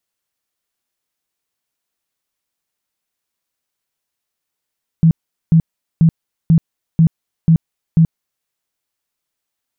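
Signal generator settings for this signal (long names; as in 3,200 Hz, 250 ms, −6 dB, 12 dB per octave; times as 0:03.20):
tone bursts 163 Hz, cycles 13, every 0.49 s, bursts 7, −6 dBFS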